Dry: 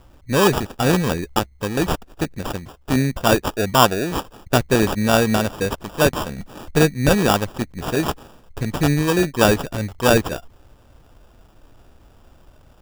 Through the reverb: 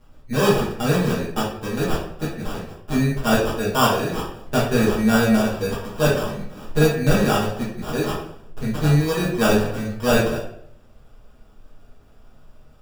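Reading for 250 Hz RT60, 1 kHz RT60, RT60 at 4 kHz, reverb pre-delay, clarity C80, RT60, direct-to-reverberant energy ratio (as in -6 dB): 0.75 s, 0.60 s, 0.50 s, 5 ms, 7.5 dB, 0.65 s, -8.5 dB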